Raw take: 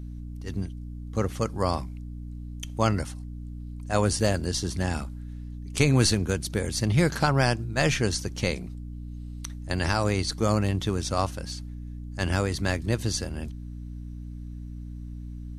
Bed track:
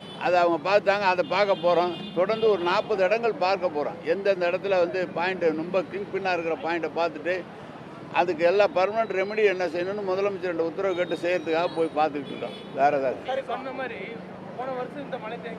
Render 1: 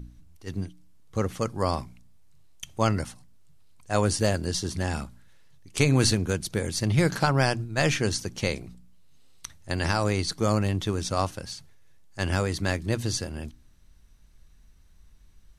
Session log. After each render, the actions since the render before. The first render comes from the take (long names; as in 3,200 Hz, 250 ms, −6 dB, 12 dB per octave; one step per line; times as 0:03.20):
hum removal 60 Hz, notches 5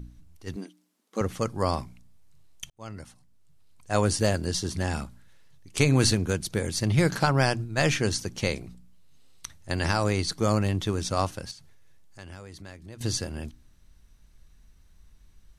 0:00.56–0:01.21: linear-phase brick-wall high-pass 190 Hz
0:02.70–0:03.91: fade in
0:11.51–0:13.01: downward compressor 2.5 to 1, threshold −48 dBFS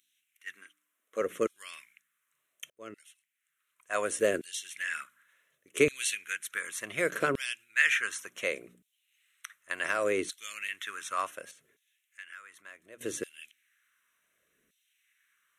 auto-filter high-pass saw down 0.68 Hz 360–4,000 Hz
phaser with its sweep stopped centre 2,000 Hz, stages 4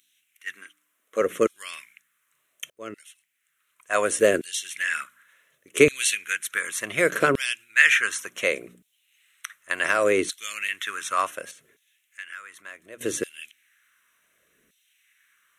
level +8 dB